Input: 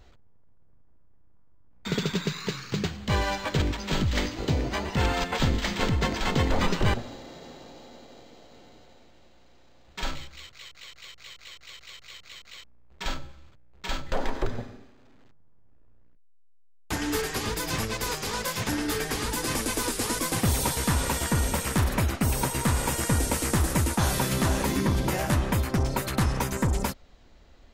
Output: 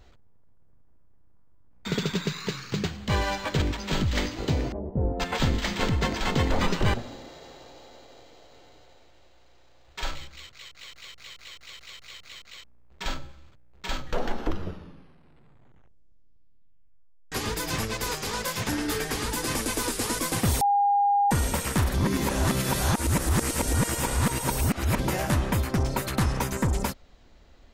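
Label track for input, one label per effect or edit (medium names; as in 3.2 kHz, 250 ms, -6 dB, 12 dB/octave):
4.720000	5.200000	Chebyshev low-pass 580 Hz, order 3
7.280000	10.220000	peaking EQ 210 Hz -12 dB
10.790000	12.440000	jump at every zero crossing of -56.5 dBFS
13.910000	13.910000	tape stop 3.41 s
20.610000	21.310000	bleep 810 Hz -18.5 dBFS
21.940000	24.990000	reverse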